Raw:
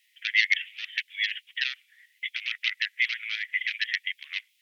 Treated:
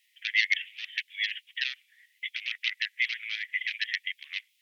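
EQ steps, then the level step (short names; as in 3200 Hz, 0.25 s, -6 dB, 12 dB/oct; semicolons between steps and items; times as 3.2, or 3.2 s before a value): HPF 1000 Hz 6 dB/oct; bell 1400 Hz -5 dB 0.23 oct; -1.5 dB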